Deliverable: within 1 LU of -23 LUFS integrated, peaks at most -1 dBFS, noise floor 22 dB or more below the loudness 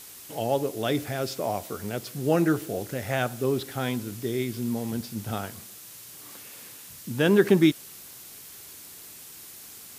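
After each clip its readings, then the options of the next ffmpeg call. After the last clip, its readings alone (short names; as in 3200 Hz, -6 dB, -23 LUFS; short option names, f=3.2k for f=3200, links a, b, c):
noise floor -45 dBFS; noise floor target -49 dBFS; loudness -27.0 LUFS; peak -6.5 dBFS; loudness target -23.0 LUFS
-> -af "afftdn=nr=6:nf=-45"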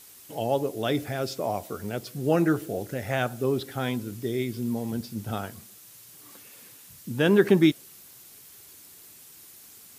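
noise floor -50 dBFS; loudness -27.0 LUFS; peak -6.5 dBFS; loudness target -23.0 LUFS
-> -af "volume=4dB"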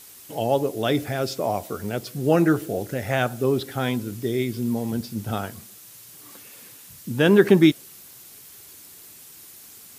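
loudness -23.0 LUFS; peak -2.5 dBFS; noise floor -46 dBFS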